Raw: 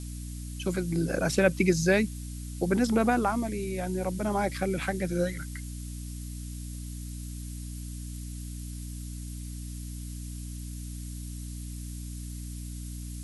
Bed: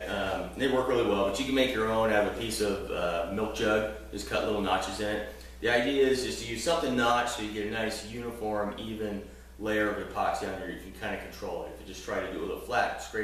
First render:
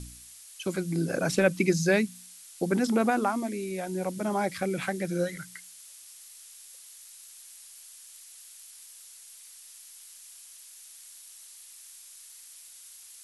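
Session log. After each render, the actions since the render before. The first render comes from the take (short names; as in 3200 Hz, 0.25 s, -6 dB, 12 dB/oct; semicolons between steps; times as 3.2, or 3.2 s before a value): de-hum 60 Hz, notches 5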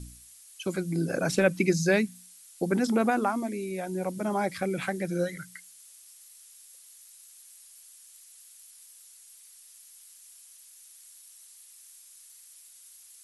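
denoiser 6 dB, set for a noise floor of -50 dBFS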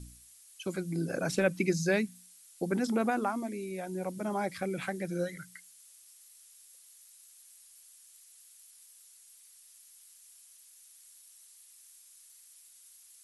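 gain -4.5 dB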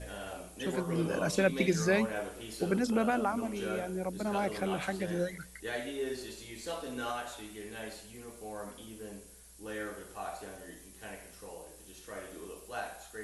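add bed -11.5 dB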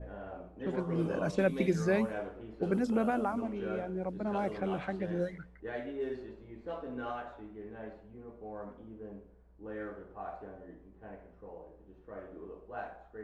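low-pass opened by the level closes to 880 Hz, open at -25 dBFS; high shelf 2000 Hz -11.5 dB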